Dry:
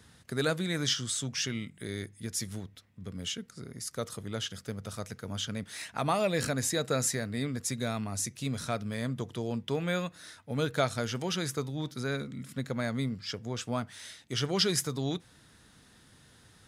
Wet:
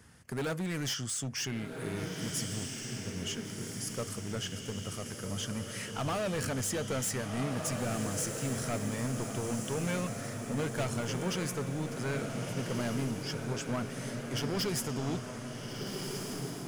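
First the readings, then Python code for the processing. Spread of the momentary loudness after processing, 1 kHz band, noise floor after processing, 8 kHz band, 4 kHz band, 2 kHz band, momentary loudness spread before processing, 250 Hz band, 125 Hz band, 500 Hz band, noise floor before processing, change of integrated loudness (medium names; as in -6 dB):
6 LU, -2.5 dB, -42 dBFS, -1.0 dB, -4.5 dB, -2.0 dB, 11 LU, -0.5 dB, 0.0 dB, -2.0 dB, -59 dBFS, -2.0 dB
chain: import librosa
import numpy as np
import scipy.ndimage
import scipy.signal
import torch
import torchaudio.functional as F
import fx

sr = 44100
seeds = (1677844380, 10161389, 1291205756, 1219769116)

p1 = fx.peak_eq(x, sr, hz=3800.0, db=-13.5, octaves=0.28)
p2 = np.clip(p1, -10.0 ** (-30.5 / 20.0), 10.0 ** (-30.5 / 20.0))
y = p2 + fx.echo_diffused(p2, sr, ms=1487, feedback_pct=51, wet_db=-4.0, dry=0)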